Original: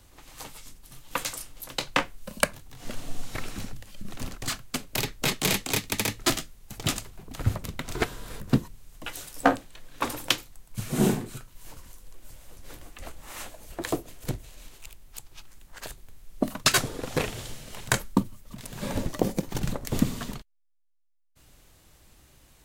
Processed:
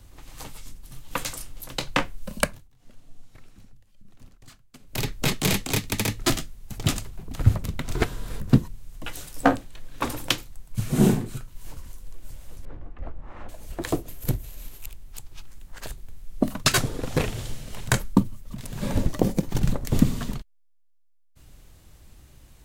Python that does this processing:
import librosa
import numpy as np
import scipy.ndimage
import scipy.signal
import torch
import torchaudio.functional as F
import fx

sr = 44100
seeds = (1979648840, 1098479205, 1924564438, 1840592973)

y = fx.lowpass(x, sr, hz=1300.0, slope=12, at=(12.65, 13.49))
y = fx.peak_eq(y, sr, hz=13000.0, db=14.0, octaves=0.47, at=(14.08, 14.86))
y = fx.edit(y, sr, fx.fade_down_up(start_s=2.41, length_s=2.66, db=-21.0, fade_s=0.28), tone=tone)
y = fx.low_shelf(y, sr, hz=220.0, db=9.0)